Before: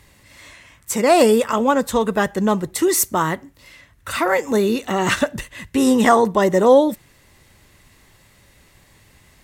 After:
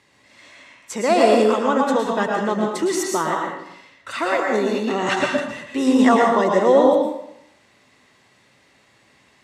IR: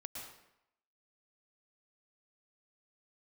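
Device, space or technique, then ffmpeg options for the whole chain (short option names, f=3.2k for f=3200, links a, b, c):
supermarket ceiling speaker: -filter_complex "[0:a]highpass=210,lowpass=6.2k[a];[1:a]atrim=start_sample=2205[b];[a][b]afir=irnorm=-1:irlink=0,volume=2dB"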